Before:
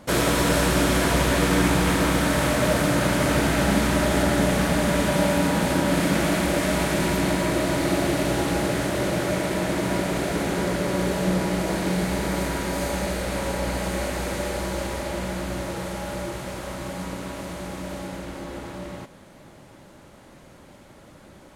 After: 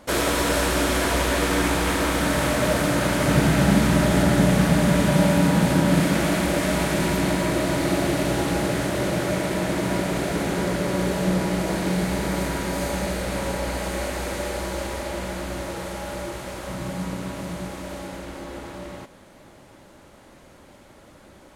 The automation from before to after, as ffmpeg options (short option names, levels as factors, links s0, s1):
-af "asetnsamples=n=441:p=0,asendcmd='2.2 equalizer g -1.5;3.27 equalizer g 8;6.03 equalizer g 1.5;13.57 equalizer g -5;16.68 equalizer g 6.5;17.68 equalizer g -4.5',equalizer=f=150:t=o:w=0.96:g=-9"